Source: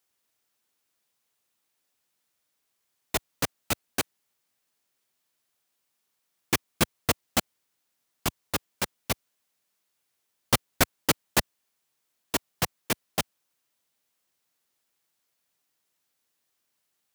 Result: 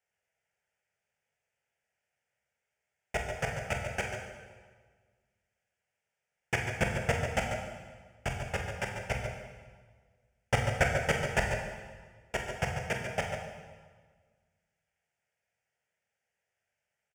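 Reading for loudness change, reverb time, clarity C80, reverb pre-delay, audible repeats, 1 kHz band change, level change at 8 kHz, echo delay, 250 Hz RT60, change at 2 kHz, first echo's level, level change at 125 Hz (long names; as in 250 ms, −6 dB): −4.0 dB, 1.6 s, 4.0 dB, 18 ms, 2, −2.0 dB, −11.5 dB, 46 ms, 1.7 s, +0.5 dB, −10.0 dB, +2.0 dB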